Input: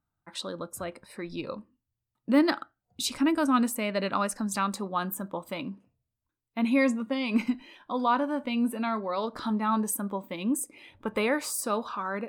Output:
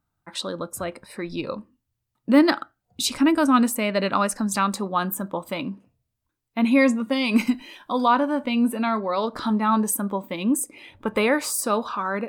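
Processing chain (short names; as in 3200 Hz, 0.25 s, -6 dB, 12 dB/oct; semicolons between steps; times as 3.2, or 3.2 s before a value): 7.03–8.08 bell 15000 Hz +11.5 dB 1.7 oct; gain +6 dB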